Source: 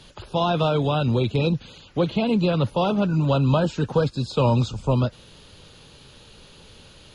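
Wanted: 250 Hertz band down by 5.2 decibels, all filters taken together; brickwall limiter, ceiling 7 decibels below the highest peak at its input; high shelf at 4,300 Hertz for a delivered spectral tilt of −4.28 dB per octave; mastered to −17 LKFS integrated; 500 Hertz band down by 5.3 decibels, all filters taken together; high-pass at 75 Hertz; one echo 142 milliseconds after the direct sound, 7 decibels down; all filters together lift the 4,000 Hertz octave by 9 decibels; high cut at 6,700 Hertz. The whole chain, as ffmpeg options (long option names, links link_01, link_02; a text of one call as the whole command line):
ffmpeg -i in.wav -af "highpass=75,lowpass=6700,equalizer=frequency=250:width_type=o:gain=-7,equalizer=frequency=500:width_type=o:gain=-5,equalizer=frequency=4000:width_type=o:gain=9,highshelf=frequency=4300:gain=4,alimiter=limit=-16dB:level=0:latency=1,aecho=1:1:142:0.447,volume=8dB" out.wav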